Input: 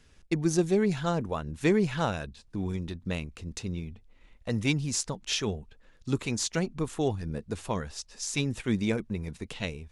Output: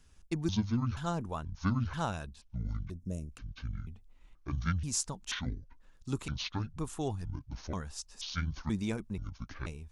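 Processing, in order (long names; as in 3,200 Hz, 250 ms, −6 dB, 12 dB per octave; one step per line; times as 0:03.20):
pitch shifter gated in a rhythm −9 semitones, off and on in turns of 483 ms
gain on a spectral selection 0:02.91–0:03.32, 680–5,100 Hz −20 dB
octave-band graphic EQ 125/250/500/2,000/4,000 Hz −4/−4/−9/−8/−5 dB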